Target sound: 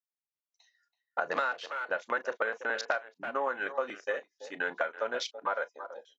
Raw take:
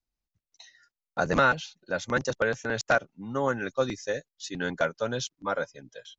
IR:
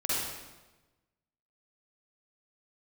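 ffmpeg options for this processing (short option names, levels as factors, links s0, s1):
-filter_complex "[0:a]highpass=650,highshelf=f=2800:g=-5,asplit=2[s0][s1];[s1]adelay=330,highpass=300,lowpass=3400,asoftclip=type=hard:threshold=0.0794,volume=0.2[s2];[s0][s2]amix=inputs=2:normalize=0,afwtdn=0.00708,asplit=2[s3][s4];[1:a]atrim=start_sample=2205,atrim=end_sample=3087,asetrate=74970,aresample=44100[s5];[s4][s5]afir=irnorm=-1:irlink=0,volume=0.251[s6];[s3][s6]amix=inputs=2:normalize=0,acompressor=threshold=0.0316:ratio=12,volume=1.5"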